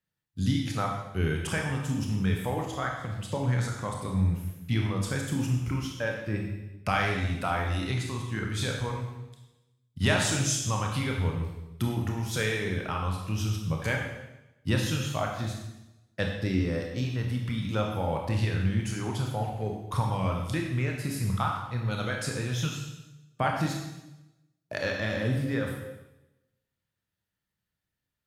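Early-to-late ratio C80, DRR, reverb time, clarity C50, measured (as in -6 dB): 5.5 dB, 0.5 dB, 0.95 s, 3.0 dB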